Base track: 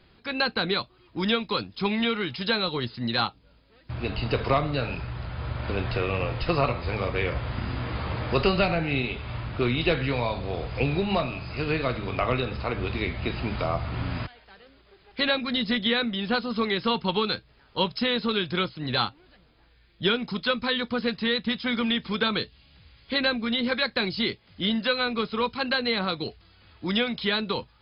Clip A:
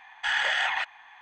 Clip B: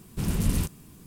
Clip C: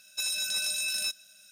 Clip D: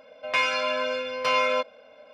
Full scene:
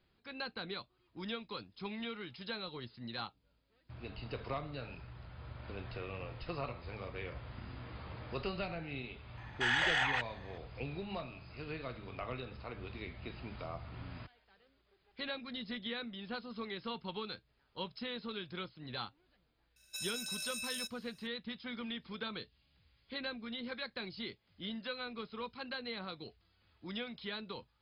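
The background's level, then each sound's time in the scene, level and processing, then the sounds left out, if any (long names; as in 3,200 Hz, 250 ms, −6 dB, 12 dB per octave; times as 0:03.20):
base track −16.5 dB
0:09.37: mix in A −5.5 dB
0:19.76: mix in C −11 dB
not used: B, D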